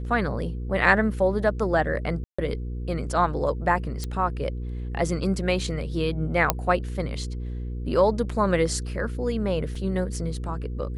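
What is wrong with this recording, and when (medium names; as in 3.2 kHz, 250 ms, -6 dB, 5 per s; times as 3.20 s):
hum 60 Hz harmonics 8 -31 dBFS
2.24–2.38 s: dropout 145 ms
4.04 s: pop -17 dBFS
6.50 s: pop -3 dBFS
9.75 s: dropout 4.2 ms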